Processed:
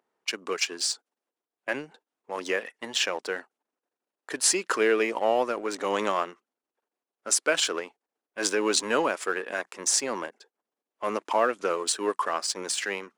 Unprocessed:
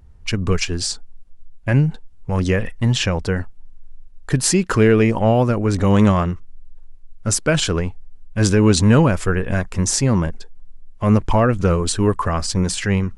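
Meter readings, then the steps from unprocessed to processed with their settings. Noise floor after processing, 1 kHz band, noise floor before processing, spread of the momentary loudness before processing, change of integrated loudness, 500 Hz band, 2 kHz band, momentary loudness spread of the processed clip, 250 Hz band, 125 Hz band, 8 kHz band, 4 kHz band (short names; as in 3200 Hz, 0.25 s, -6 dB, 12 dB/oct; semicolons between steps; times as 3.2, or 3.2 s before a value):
under -85 dBFS, -4.5 dB, -41 dBFS, 11 LU, -9.0 dB, -7.5 dB, -4.0 dB, 12 LU, -17.5 dB, under -35 dB, -3.5 dB, -3.5 dB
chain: HPF 310 Hz 24 dB/oct; in parallel at -5 dB: crossover distortion -31 dBFS; on the sum: low shelf 410 Hz -9 dB; mismatched tape noise reduction decoder only; gain -6.5 dB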